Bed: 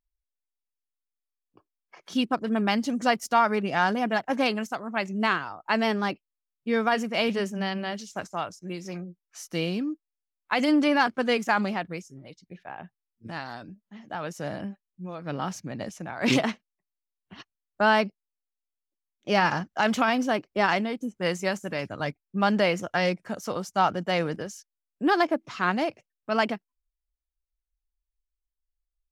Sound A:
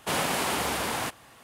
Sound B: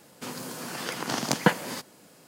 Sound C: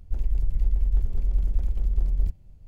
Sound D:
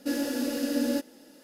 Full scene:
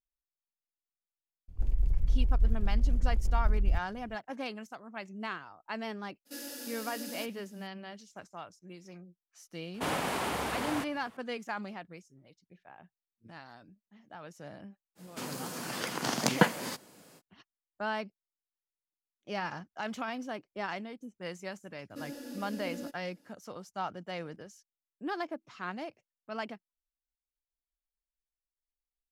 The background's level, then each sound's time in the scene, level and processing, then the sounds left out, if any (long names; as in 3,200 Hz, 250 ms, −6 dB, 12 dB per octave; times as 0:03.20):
bed −13.5 dB
0:01.48: mix in C −4 dB + parametric band 140 Hz +2.5 dB 2.5 octaves
0:06.25: mix in D −12.5 dB, fades 0.02 s + spectral tilt +3 dB per octave
0:09.74: mix in A −3.5 dB + high-shelf EQ 3,000 Hz −7.5 dB
0:14.95: mix in B −2.5 dB, fades 0.05 s
0:21.90: mix in D −14 dB